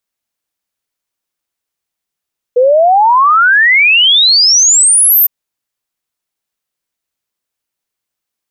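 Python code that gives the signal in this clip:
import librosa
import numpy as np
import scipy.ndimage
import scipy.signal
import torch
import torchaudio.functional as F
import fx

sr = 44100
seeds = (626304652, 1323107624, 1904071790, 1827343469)

y = fx.ess(sr, length_s=2.71, from_hz=480.0, to_hz=14000.0, level_db=-4.5)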